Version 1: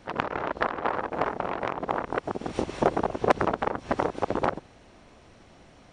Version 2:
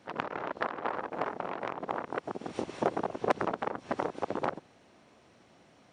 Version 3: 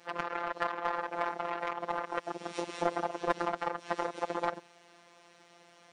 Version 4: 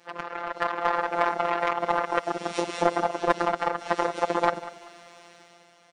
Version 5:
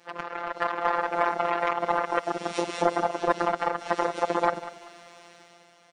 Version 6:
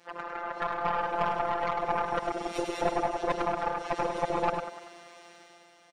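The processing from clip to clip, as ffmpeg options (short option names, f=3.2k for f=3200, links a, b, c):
-af "highpass=130,volume=-6dB"
-filter_complex "[0:a]crystalizer=i=3.5:c=0,asplit=2[a][b];[b]highpass=f=720:p=1,volume=18dB,asoftclip=type=tanh:threshold=-6dB[c];[a][c]amix=inputs=2:normalize=0,lowpass=f=1.9k:p=1,volume=-6dB,afftfilt=real='hypot(re,im)*cos(PI*b)':imag='0':win_size=1024:overlap=0.75,volume=-5dB"
-af "dynaudnorm=f=100:g=13:m=10dB,aecho=1:1:193|386|579:0.158|0.0507|0.0162"
-af "asoftclip=type=tanh:threshold=-4.5dB"
-af "aeval=exprs='(tanh(6.31*val(0)+0.45)-tanh(0.45))/6.31':c=same,aecho=1:1:102:0.473"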